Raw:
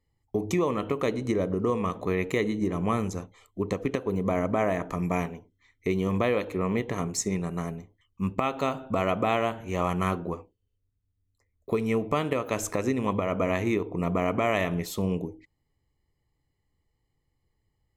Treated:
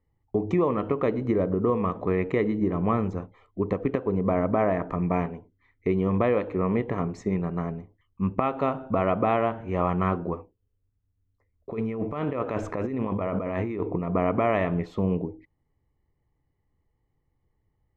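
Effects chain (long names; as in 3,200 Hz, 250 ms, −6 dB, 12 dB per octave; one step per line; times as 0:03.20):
low-pass filter 1,700 Hz 12 dB per octave
0:11.71–0:14.15: compressor whose output falls as the input rises −31 dBFS, ratio −1
level +2.5 dB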